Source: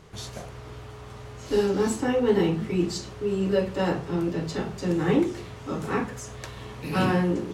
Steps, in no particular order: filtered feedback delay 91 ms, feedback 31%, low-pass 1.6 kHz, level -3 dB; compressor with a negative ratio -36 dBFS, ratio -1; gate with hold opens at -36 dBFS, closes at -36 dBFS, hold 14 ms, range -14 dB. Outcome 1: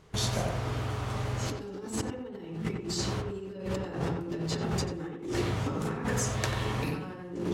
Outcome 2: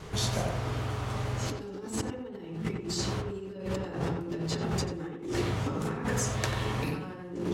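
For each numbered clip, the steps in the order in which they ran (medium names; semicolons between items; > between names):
gate with hold > compressor with a negative ratio > filtered feedback delay; compressor with a negative ratio > filtered feedback delay > gate with hold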